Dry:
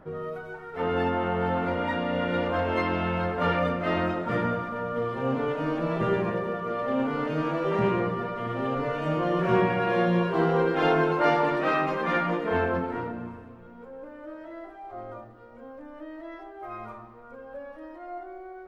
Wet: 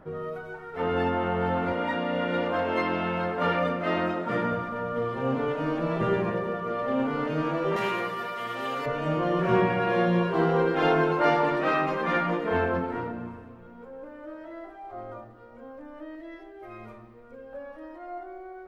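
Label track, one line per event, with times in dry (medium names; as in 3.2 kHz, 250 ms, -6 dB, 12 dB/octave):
1.720000	4.520000	high-pass 150 Hz
7.760000	8.860000	tilt EQ +4.5 dB/octave
16.150000	17.530000	high-order bell 1 kHz -8.5 dB 1.3 oct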